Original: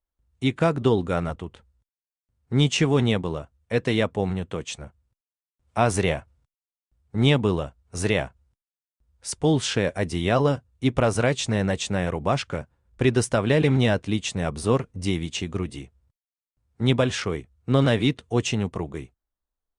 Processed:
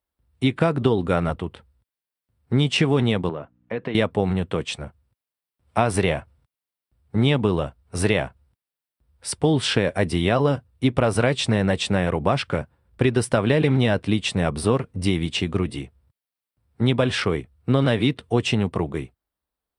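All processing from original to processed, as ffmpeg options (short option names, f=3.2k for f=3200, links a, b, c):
-filter_complex "[0:a]asettb=1/sr,asplit=3[a][b][c];[a]atrim=end=3.294[d];[b]atrim=start=3.29:end=3.95,asetpts=PTS-STARTPTS,afade=t=in:d=0.004:c=qsin,afade=t=out:st=0.656:d=0.004:c=qsin,acompressor=threshold=-29dB:ratio=5:attack=3.2:release=140:knee=1:detection=peak,aeval=exprs='val(0)+0.000891*(sin(2*PI*60*n/s)+sin(2*PI*2*60*n/s)/2+sin(2*PI*3*60*n/s)/3+sin(2*PI*4*60*n/s)/4+sin(2*PI*5*60*n/s)/5)':c=same,highpass=150,lowpass=2.4k[e];[c]atrim=start=3.946[f];[d][e]acrossfade=d=0.004:c1=hsin:c2=qsin[g];[g][f]acrossfade=d=0.004:c1=qsin:c2=hsin,equalizer=f=6.6k:t=o:w=0.35:g=-13.5,acompressor=threshold=-21dB:ratio=6,highpass=68,volume=6dB"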